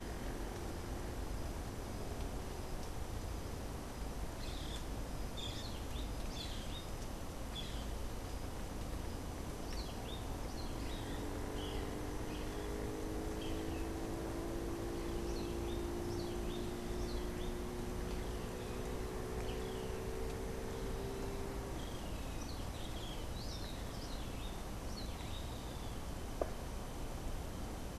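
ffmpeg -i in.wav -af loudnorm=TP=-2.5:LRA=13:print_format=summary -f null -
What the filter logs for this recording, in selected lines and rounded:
Input Integrated:    -44.2 LUFS
Input True Peak:     -20.9 dBTP
Input LRA:             3.2 LU
Input Threshold:     -54.2 LUFS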